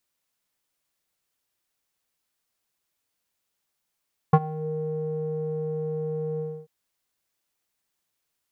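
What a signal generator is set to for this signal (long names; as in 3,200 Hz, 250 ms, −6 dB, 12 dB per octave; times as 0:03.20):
subtractive voice square D#3 12 dB per octave, low-pass 490 Hz, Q 4.8, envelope 1 octave, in 0.32 s, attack 6.3 ms, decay 0.05 s, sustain −21 dB, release 0.28 s, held 2.06 s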